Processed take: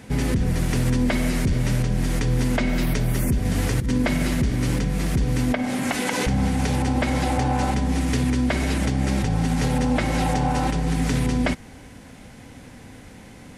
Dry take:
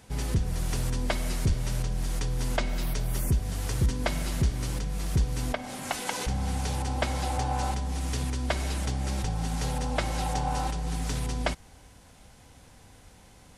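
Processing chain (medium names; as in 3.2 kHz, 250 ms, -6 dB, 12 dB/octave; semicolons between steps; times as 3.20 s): graphic EQ 125/250/500/2000 Hz +5/+11/+4/+8 dB; 3.45–3.91 s: compressor with a negative ratio -24 dBFS, ratio -1; peak limiter -17.5 dBFS, peak gain reduction 9.5 dB; trim +4.5 dB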